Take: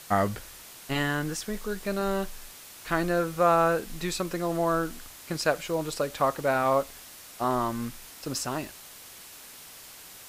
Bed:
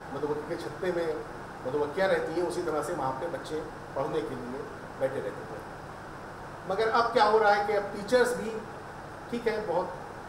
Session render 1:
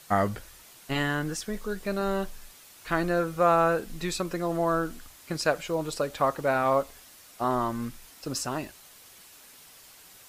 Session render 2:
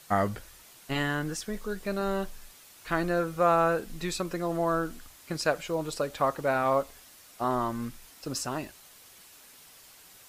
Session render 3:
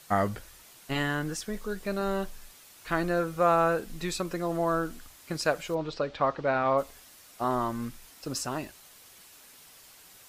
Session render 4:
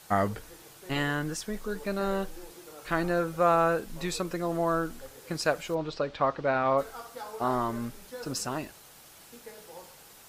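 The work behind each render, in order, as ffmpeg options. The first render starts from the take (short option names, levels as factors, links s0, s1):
-af "afftdn=nr=6:nf=-47"
-af "volume=0.841"
-filter_complex "[0:a]asplit=3[s0][s1][s2];[s0]afade=t=out:st=5.74:d=0.02[s3];[s1]lowpass=f=4800:w=0.5412,lowpass=f=4800:w=1.3066,afade=t=in:st=5.74:d=0.02,afade=t=out:st=6.77:d=0.02[s4];[s2]afade=t=in:st=6.77:d=0.02[s5];[s3][s4][s5]amix=inputs=3:normalize=0"
-filter_complex "[1:a]volume=0.119[s0];[0:a][s0]amix=inputs=2:normalize=0"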